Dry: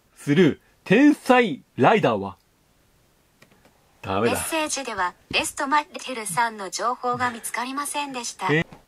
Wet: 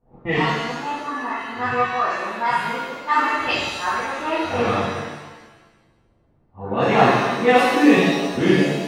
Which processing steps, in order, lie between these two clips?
reverse the whole clip; level-controlled noise filter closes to 550 Hz, open at -13 dBFS; pitch-shifted reverb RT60 1.2 s, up +7 st, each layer -8 dB, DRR -9.5 dB; trim -7 dB

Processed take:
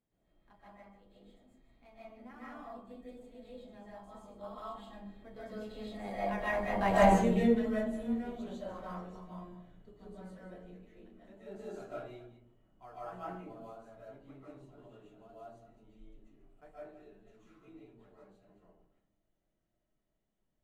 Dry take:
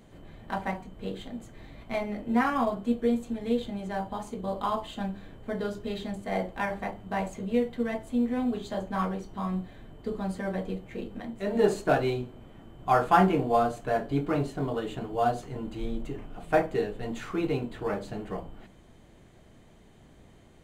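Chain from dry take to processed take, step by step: chunks repeated in reverse 127 ms, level -12 dB; Doppler pass-by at 6.94 s, 15 m/s, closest 2.5 m; algorithmic reverb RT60 0.56 s, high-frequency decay 0.35×, pre-delay 105 ms, DRR -7.5 dB

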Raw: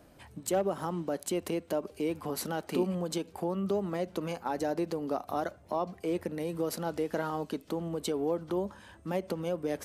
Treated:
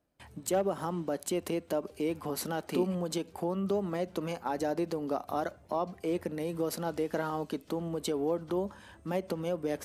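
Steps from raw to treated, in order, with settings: gate with hold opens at -48 dBFS

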